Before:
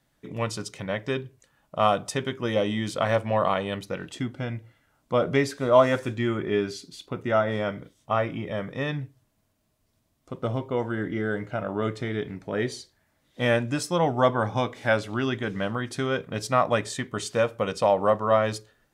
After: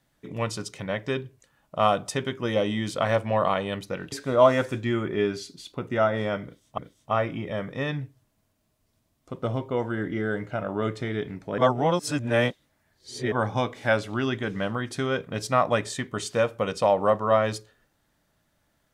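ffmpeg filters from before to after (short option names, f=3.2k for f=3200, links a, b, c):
-filter_complex "[0:a]asplit=5[a][b][c][d][e];[a]atrim=end=4.122[f];[b]atrim=start=5.458:end=8.122[g];[c]atrim=start=7.778:end=12.582[h];[d]atrim=start=12.578:end=14.322,asetpts=PTS-STARTPTS,areverse[i];[e]atrim=start=14.318[j];[f][g]acrossfade=d=0.004:c1=hsin:c2=hsin[k];[k][h]acrossfade=d=0.004:c1=hsin:c2=hsin[l];[l][i]acrossfade=d=0.004:c1=hsin:c2=hsin[m];[m][j]acrossfade=d=0.004:c1=hsin:c2=hsin"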